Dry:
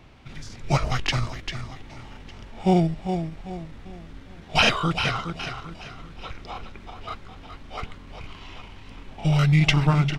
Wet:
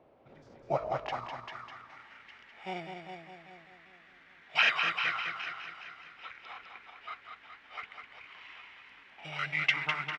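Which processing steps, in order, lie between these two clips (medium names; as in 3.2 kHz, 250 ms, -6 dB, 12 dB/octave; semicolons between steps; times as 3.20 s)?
band-pass sweep 550 Hz -> 1.9 kHz, 0.64–2.19 s; on a send: delay 203 ms -6 dB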